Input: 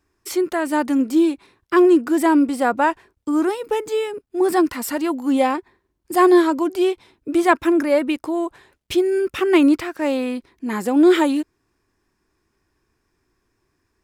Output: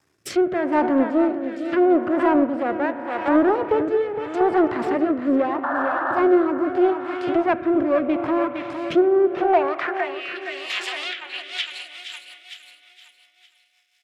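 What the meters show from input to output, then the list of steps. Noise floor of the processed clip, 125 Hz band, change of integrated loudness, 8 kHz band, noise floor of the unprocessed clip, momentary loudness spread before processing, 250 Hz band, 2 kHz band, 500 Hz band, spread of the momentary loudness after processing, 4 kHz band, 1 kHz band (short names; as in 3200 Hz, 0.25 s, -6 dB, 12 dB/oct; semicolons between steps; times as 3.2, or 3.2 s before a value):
-63 dBFS, n/a, -2.5 dB, under -10 dB, -72 dBFS, 11 LU, -3.5 dB, -1.0 dB, -1.0 dB, 12 LU, +1.0 dB, -0.5 dB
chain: half-wave rectifier; painted sound noise, 5.63–6.22, 510–1800 Hz -28 dBFS; low shelf 500 Hz -7.5 dB; high-pass sweep 120 Hz -> 2900 Hz, 8.8–10.16; vocal rider within 4 dB 0.5 s; on a send: feedback echo 0.461 s, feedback 43%, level -8.5 dB; on the sum: spring tank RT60 4 s, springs 33 ms, chirp 75 ms, DRR 11 dB; treble ducked by the level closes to 1300 Hz, closed at -25 dBFS; rotary speaker horn 0.8 Hz, later 5.5 Hz, at 10.79; in parallel at -5.5 dB: soft clip -23.5 dBFS, distortion -14 dB; on the sum: gain +6 dB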